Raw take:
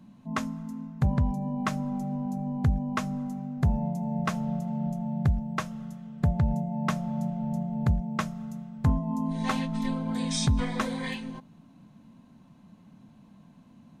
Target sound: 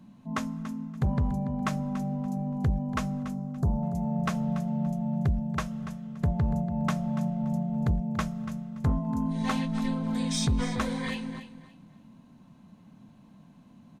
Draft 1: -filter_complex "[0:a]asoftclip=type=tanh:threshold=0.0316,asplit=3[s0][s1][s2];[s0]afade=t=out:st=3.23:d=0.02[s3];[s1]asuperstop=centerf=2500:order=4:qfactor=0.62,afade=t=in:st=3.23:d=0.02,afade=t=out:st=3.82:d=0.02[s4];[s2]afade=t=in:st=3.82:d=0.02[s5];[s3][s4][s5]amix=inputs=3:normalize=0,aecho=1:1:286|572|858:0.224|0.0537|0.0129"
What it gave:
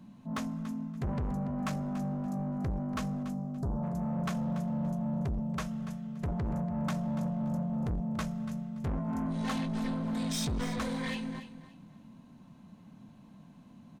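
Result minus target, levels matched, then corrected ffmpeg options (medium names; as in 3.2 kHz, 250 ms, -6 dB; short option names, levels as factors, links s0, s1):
saturation: distortion +12 dB
-filter_complex "[0:a]asoftclip=type=tanh:threshold=0.126,asplit=3[s0][s1][s2];[s0]afade=t=out:st=3.23:d=0.02[s3];[s1]asuperstop=centerf=2500:order=4:qfactor=0.62,afade=t=in:st=3.23:d=0.02,afade=t=out:st=3.82:d=0.02[s4];[s2]afade=t=in:st=3.82:d=0.02[s5];[s3][s4][s5]amix=inputs=3:normalize=0,aecho=1:1:286|572|858:0.224|0.0537|0.0129"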